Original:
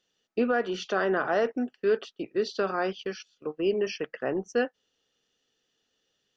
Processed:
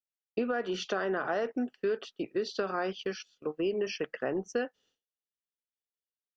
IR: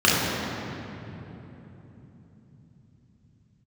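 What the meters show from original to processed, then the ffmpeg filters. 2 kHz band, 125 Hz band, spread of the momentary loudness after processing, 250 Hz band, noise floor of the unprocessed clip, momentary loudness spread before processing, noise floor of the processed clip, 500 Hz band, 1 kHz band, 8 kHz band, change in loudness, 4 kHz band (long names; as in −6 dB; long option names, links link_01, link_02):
−5.0 dB, −3.0 dB, 7 LU, −3.5 dB, −78 dBFS, 8 LU, below −85 dBFS, −4.5 dB, −5.0 dB, can't be measured, −4.5 dB, −2.0 dB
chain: -af "agate=range=-33dB:threshold=-57dB:ratio=3:detection=peak,acompressor=threshold=-27dB:ratio=6"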